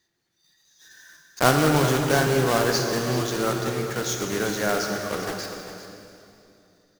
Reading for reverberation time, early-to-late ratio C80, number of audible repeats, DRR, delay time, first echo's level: 2.7 s, 3.5 dB, 1, 2.5 dB, 397 ms, −12.5 dB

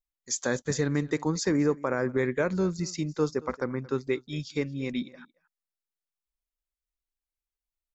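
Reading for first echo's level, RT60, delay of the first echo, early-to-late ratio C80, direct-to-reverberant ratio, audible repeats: −21.5 dB, no reverb audible, 226 ms, no reverb audible, no reverb audible, 1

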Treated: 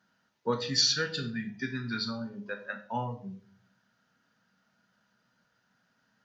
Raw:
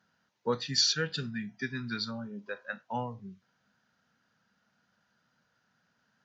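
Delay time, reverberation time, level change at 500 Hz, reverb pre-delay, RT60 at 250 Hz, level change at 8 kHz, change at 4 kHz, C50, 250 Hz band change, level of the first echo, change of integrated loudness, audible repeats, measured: no echo audible, 0.50 s, +1.0 dB, 3 ms, 0.80 s, can't be measured, +1.0 dB, 12.5 dB, +2.0 dB, no echo audible, +1.5 dB, no echo audible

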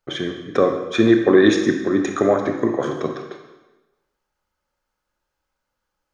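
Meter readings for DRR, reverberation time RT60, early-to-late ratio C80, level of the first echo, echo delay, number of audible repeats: 4.0 dB, 1.1 s, 7.5 dB, no echo audible, no echo audible, no echo audible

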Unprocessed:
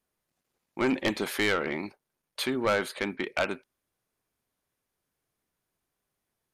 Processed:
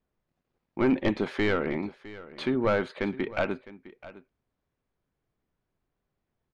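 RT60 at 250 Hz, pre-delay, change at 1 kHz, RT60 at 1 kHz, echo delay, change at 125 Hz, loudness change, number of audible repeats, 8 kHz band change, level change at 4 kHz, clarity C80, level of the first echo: no reverb audible, no reverb audible, −1.0 dB, no reverb audible, 658 ms, +6.0 dB, +0.5 dB, 1, below −15 dB, −6.5 dB, no reverb audible, −17.5 dB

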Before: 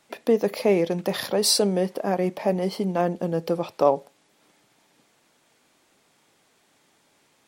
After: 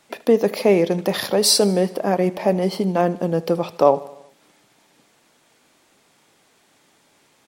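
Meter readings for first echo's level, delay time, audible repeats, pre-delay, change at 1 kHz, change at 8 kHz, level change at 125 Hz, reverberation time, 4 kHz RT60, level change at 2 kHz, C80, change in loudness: −20.0 dB, 77 ms, 4, no reverb audible, +4.5 dB, +4.5 dB, +4.5 dB, no reverb audible, no reverb audible, +4.5 dB, no reverb audible, +4.5 dB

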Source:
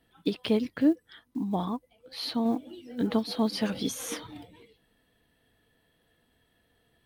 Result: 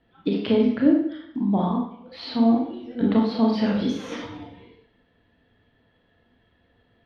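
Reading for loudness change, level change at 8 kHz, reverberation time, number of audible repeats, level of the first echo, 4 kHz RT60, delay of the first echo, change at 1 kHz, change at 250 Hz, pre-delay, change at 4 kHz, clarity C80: +7.5 dB, below −10 dB, 0.70 s, no echo audible, no echo audible, 0.65 s, no echo audible, +6.5 dB, +8.0 dB, 29 ms, 0.0 dB, 7.5 dB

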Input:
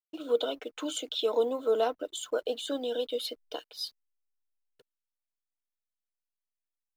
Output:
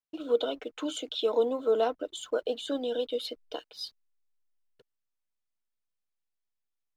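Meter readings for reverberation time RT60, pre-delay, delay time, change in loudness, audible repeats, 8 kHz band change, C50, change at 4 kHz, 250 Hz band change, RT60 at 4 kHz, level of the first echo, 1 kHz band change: no reverb audible, no reverb audible, no echo audible, +0.5 dB, no echo audible, −4.5 dB, no reverb audible, −1.5 dB, +2.5 dB, no reverb audible, no echo audible, +0.5 dB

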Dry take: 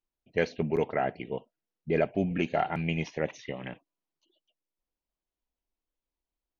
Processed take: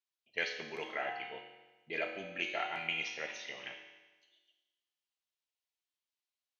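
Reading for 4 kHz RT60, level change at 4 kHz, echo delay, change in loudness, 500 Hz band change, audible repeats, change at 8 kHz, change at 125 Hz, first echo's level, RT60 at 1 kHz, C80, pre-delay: 1.2 s, +3.5 dB, no echo audible, −7.5 dB, −13.5 dB, no echo audible, can't be measured, −25.0 dB, no echo audible, 1.2 s, 7.0 dB, 4 ms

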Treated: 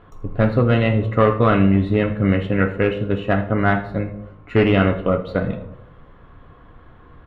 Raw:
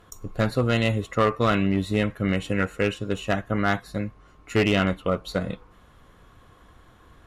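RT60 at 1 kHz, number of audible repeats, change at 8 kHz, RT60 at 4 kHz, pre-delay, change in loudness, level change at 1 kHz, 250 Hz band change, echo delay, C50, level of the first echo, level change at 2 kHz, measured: 0.70 s, 1, below −20 dB, 0.45 s, 7 ms, +6.0 dB, +4.5 dB, +6.5 dB, 81 ms, 11.0 dB, −17.0 dB, +3.5 dB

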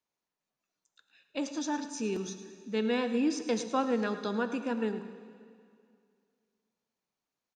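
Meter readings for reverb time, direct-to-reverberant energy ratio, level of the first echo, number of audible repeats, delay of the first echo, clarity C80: 2.3 s, 8.5 dB, −14.0 dB, 2, 106 ms, 10.0 dB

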